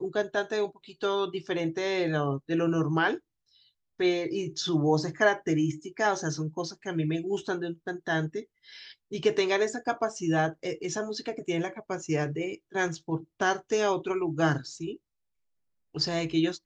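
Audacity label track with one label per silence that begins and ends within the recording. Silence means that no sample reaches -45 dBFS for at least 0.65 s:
3.180000	4.000000	silence
14.960000	15.950000	silence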